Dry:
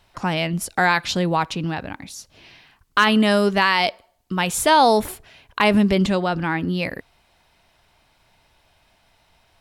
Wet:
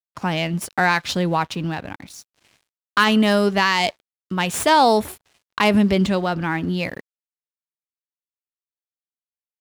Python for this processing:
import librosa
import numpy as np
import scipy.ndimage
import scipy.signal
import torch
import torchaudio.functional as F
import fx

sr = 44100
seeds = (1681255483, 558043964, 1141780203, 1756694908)

y = fx.tracing_dist(x, sr, depth_ms=0.029)
y = scipy.signal.sosfilt(scipy.signal.butter(4, 58.0, 'highpass', fs=sr, output='sos'), y)
y = fx.low_shelf(y, sr, hz=120.0, db=2.5)
y = np.sign(y) * np.maximum(np.abs(y) - 10.0 ** (-44.5 / 20.0), 0.0)